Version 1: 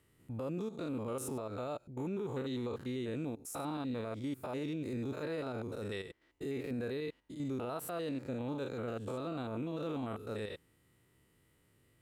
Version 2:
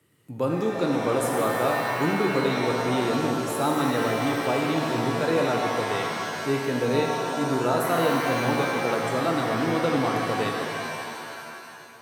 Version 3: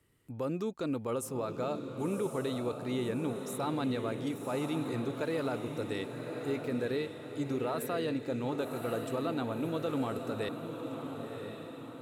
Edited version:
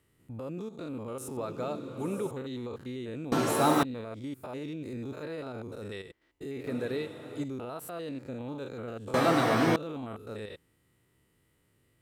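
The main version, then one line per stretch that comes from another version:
1
1.37–2.31 from 3
3.32–3.83 from 2
6.67–7.44 from 3
9.14–9.76 from 2

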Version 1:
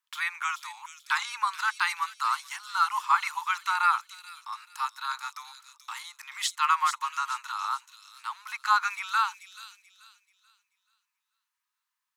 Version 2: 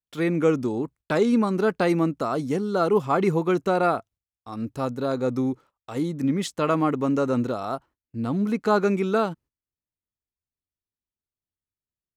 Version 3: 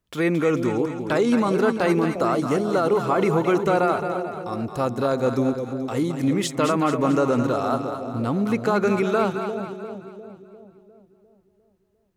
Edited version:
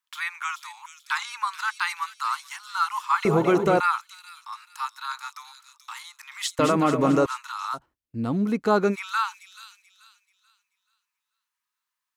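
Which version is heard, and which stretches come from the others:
1
3.25–3.8 from 3
6.59–7.26 from 3
7.76–8.93 from 2, crossfade 0.06 s

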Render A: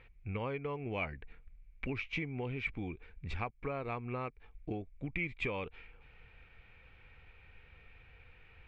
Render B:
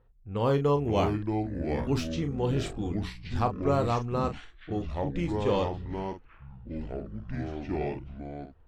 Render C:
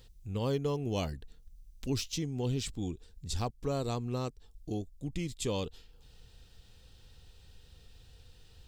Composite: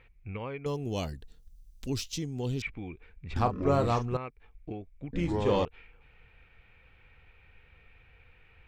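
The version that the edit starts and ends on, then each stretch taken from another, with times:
A
0.66–2.62 from C
3.36–4.17 from B
5.13–5.65 from B

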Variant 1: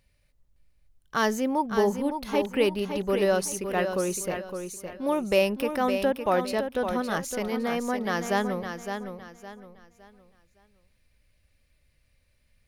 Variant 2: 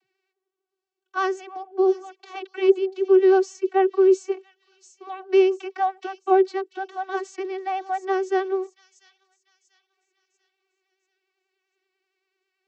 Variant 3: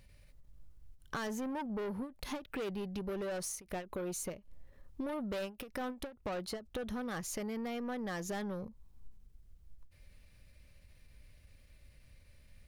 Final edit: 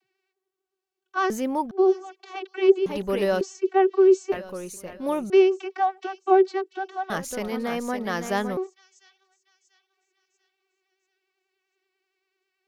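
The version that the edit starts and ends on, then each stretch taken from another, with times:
2
1.3–1.71 from 1
2.86–3.41 from 1
4.32–5.3 from 1
7.1–8.57 from 1
not used: 3

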